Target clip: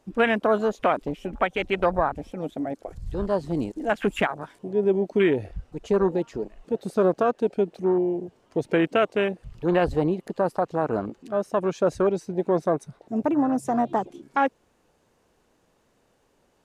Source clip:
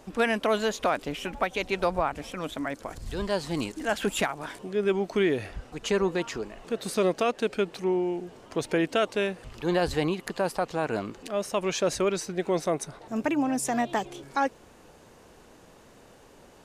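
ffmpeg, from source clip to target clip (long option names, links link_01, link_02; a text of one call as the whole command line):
ffmpeg -i in.wav -af "afwtdn=0.0282,volume=4dB" out.wav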